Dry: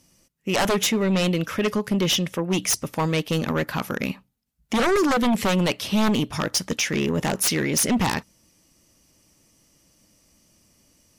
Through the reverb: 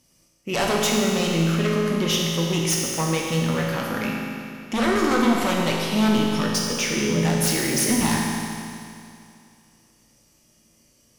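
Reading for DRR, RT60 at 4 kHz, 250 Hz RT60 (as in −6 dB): −2.5 dB, 2.5 s, 2.5 s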